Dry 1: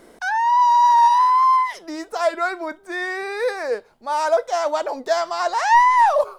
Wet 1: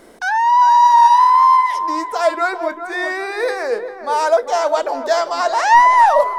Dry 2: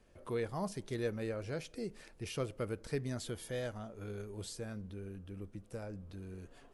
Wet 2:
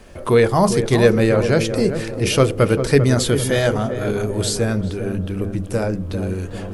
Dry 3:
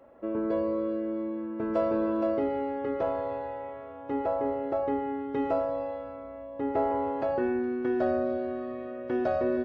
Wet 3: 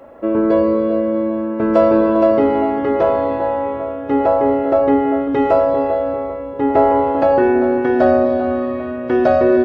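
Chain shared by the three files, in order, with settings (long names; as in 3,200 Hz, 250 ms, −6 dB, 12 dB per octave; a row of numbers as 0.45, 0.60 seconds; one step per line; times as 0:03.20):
mains-hum notches 50/100/150/200/250/300/350/400/450/500 Hz
on a send: feedback echo with a low-pass in the loop 396 ms, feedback 55%, low-pass 1,100 Hz, level −8 dB
on the sum: normalise the peak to −1.5 dBFS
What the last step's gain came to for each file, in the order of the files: +4.0, +23.0, +14.5 decibels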